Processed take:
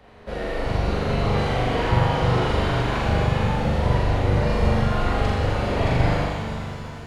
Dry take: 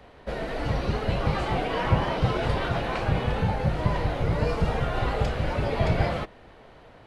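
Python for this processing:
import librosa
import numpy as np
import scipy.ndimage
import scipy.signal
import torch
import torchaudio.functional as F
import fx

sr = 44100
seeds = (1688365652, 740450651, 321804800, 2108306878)

y = fx.room_flutter(x, sr, wall_m=7.0, rt60_s=1.1)
y = fx.rev_shimmer(y, sr, seeds[0], rt60_s=3.0, semitones=7, shimmer_db=-8, drr_db=4.0)
y = y * librosa.db_to_amplitude(-1.5)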